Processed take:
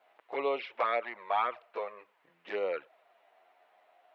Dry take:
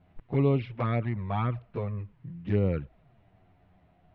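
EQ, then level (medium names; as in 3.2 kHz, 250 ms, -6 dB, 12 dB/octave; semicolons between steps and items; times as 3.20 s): high-pass 540 Hz 24 dB/octave; +4.5 dB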